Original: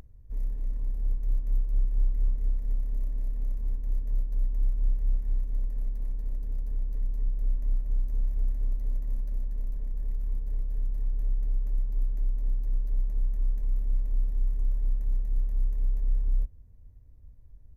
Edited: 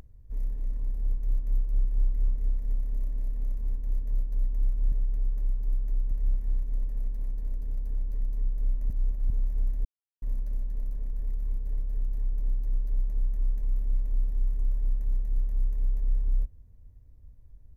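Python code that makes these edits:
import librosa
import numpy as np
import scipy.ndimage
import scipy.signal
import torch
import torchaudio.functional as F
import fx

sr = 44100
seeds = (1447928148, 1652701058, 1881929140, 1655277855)

y = fx.edit(x, sr, fx.reverse_span(start_s=7.71, length_s=0.4),
    fx.silence(start_s=8.66, length_s=0.37),
    fx.move(start_s=11.21, length_s=1.19, to_s=4.92), tone=tone)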